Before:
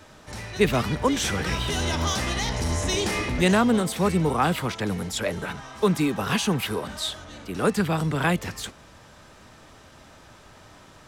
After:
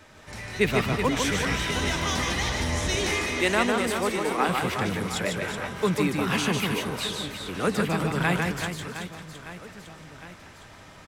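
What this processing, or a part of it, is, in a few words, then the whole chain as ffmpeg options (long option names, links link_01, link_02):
ducked delay: -filter_complex "[0:a]asplit=3[link_01][link_02][link_03];[link_02]adelay=171,volume=-3dB[link_04];[link_03]apad=whole_len=495774[link_05];[link_04][link_05]sidechaincompress=threshold=-35dB:ratio=8:attack=16:release=644[link_06];[link_01][link_06]amix=inputs=2:normalize=0,asettb=1/sr,asplit=3[link_07][link_08][link_09];[link_07]atrim=end=2.964[link_10];[link_08]atrim=start=2.96:end=4.49,asetpts=PTS-STARTPTS,afade=type=in:duration=0.004:curve=qsin,afade=type=out:start_time=1.526:duration=0.004:curve=qsin,highpass=frequency=250:width=0.5412,highpass=frequency=250:width=1.3066[link_11];[link_09]atrim=start=4.486[link_12];[link_10][link_11]acrossfade=duration=0.004:curve1=hsin:curve2=qsin[link_13];[link_13][link_12]acrossfade=duration=0.004:curve1=qsin:curve2=hsin,equalizer=frequency=2100:width_type=o:width=0.7:gain=5.5,aecho=1:1:150|375|712.5|1219|1978:0.631|0.398|0.251|0.158|0.1,volume=-3.5dB"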